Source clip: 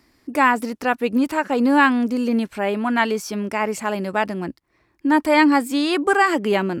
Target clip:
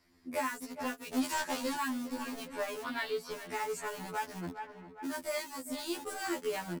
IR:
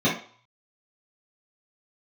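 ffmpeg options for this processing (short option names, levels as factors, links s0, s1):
-filter_complex "[0:a]asettb=1/sr,asplit=3[s0][s1][s2];[s0]atrim=end=5.384[s3];[s1]atrim=start=5.38:end=6.26,asetpts=PTS-STARTPTS,afade=t=in:d=0.004:c=qsin,afade=t=out:st=0.876:d=0.004:c=qsin,equalizer=f=1700:w=0.51:g=-9[s4];[s2]atrim=start=6.256[s5];[s3][s4]acrossfade=d=0.004:c1=hsin:c2=qsin[s6];[s6][s5]acrossfade=d=0.004:c1=qsin:c2=hsin,flanger=delay=9.5:depth=3.7:regen=2:speed=1.8:shape=triangular,asplit=2[s7][s8];[s8]aeval=exprs='val(0)*gte(abs(val(0)),0.0668)':c=same,volume=0.631[s9];[s7][s9]amix=inputs=2:normalize=0,asettb=1/sr,asplit=3[s10][s11][s12];[s10]atrim=end=1.114[s13];[s11]atrim=start=1.11:end=1.76,asetpts=PTS-STARTPTS,afade=t=in:d=0.004:c=qsin,afade=t=out:st=0.646:d=0.004:c=qsin,asplit=2[s14][s15];[s15]highpass=f=720:p=1,volume=14.1,asoftclip=type=tanh:threshold=0.631[s16];[s14][s16]amix=inputs=2:normalize=0,lowpass=f=6900:p=1,volume=0.501[s17];[s12]atrim=start=1.756[s18];[s13][s17]acrossfade=d=0.004:c1=hsin:c2=qsin[s19];[s19][s18]acrossfade=d=0.004:c1=qsin:c2=hsin,asettb=1/sr,asplit=3[s20][s21][s22];[s20]atrim=end=2.844[s23];[s21]atrim=start=2.84:end=3.31,asetpts=PTS-STARTPTS,afade=t=in:d=0.004:c=qsin,afade=t=out:st=0.466:d=0.004:c=qsin,highshelf=f=5100:t=q:w=3:g=-7[s24];[s22]atrim=start=3.306[s25];[s23][s24]acrossfade=d=0.004:c1=hsin:c2=qsin[s26];[s26][s25]acrossfade=d=0.004:c1=qsin:c2=hsin,asplit=2[s27][s28];[s28]adelay=408,lowpass=f=3300:p=1,volume=0.126,asplit=2[s29][s30];[s30]adelay=408,lowpass=f=3300:p=1,volume=0.5,asplit=2[s31][s32];[s32]adelay=408,lowpass=f=3300:p=1,volume=0.5,asplit=2[s33][s34];[s34]adelay=408,lowpass=f=3300:p=1,volume=0.5[s35];[s27][s29][s31][s33][s35]amix=inputs=5:normalize=0,acrossover=split=5100[s36][s37];[s36]acompressor=threshold=0.0398:ratio=6[s38];[s37]asoftclip=type=tanh:threshold=0.0422[s39];[s38][s39]amix=inputs=2:normalize=0,afftfilt=real='re*2*eq(mod(b,4),0)':imag='im*2*eq(mod(b,4),0)':win_size=2048:overlap=0.75,volume=0.668"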